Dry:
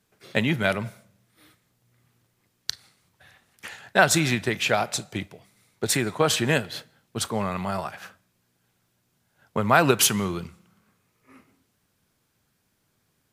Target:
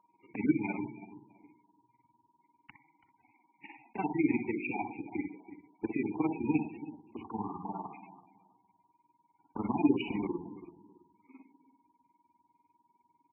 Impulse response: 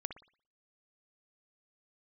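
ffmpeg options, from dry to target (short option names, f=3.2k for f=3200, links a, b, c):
-filter_complex "[0:a]asplit=3[a][b][c];[a]bandpass=f=300:t=q:w=8,volume=0dB[d];[b]bandpass=f=870:t=q:w=8,volume=-6dB[e];[c]bandpass=f=2.24k:t=q:w=8,volume=-9dB[f];[d][e][f]amix=inputs=3:normalize=0,aemphasis=mode=reproduction:type=50fm,acrossover=split=310[g][h];[h]alimiter=level_in=7dB:limit=-24dB:level=0:latency=1:release=13,volume=-7dB[i];[g][i]amix=inputs=2:normalize=0,acontrast=80,adynamicequalizer=threshold=0.00316:dfrequency=1300:dqfactor=1.7:tfrequency=1300:tqfactor=1.7:attack=5:release=100:ratio=0.375:range=2.5:mode=cutabove:tftype=bell,aresample=16000,acrusher=bits=3:mode=log:mix=0:aa=0.000001,aresample=44100,aeval=exprs='val(0)+0.000708*sin(2*PI*950*n/s)':c=same,tremolo=f=20:d=0.889,asplit=2[j][k];[k]adelay=331,lowpass=f=2k:p=1,volume=-14dB,asplit=2[l][m];[m]adelay=331,lowpass=f=2k:p=1,volume=0.24,asplit=2[n][o];[o]adelay=331,lowpass=f=2k:p=1,volume=0.24[p];[j][l][n][p]amix=inputs=4:normalize=0[q];[1:a]atrim=start_sample=2205[r];[q][r]afir=irnorm=-1:irlink=0,volume=3.5dB" -ar 24000 -c:a libmp3lame -b:a 8k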